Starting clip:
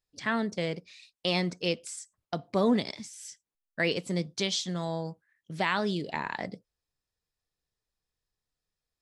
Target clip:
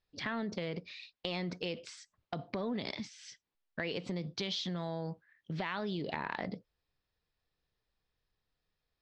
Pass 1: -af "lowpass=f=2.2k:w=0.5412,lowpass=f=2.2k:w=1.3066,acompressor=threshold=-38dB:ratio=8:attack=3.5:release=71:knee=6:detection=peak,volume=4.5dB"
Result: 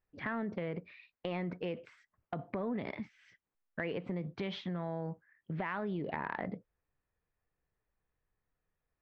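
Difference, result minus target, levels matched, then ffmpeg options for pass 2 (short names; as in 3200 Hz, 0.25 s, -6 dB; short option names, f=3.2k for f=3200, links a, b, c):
4000 Hz band -10.0 dB
-af "lowpass=f=4.5k:w=0.5412,lowpass=f=4.5k:w=1.3066,acompressor=threshold=-38dB:ratio=8:attack=3.5:release=71:knee=6:detection=peak,volume=4.5dB"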